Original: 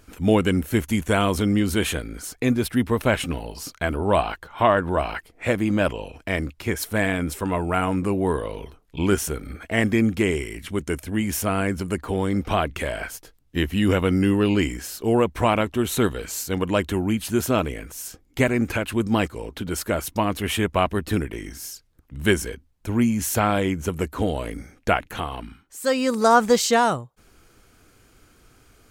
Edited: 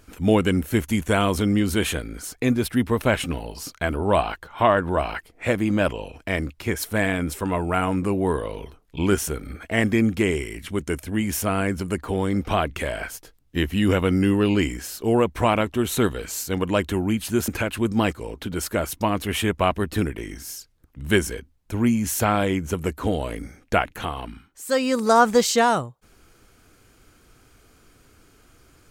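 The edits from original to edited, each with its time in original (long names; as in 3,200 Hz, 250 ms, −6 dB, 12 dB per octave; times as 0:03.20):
0:17.48–0:18.63: remove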